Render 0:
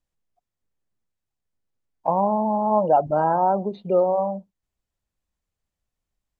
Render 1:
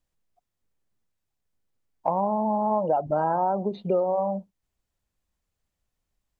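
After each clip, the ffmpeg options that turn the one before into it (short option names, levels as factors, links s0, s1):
-af "acompressor=threshold=0.0631:ratio=4,volume=1.33"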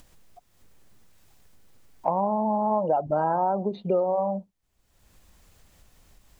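-af "acompressor=mode=upward:threshold=0.0158:ratio=2.5"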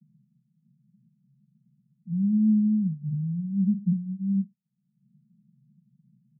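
-af "asuperpass=centerf=170:order=20:qfactor=1.7,volume=2.82"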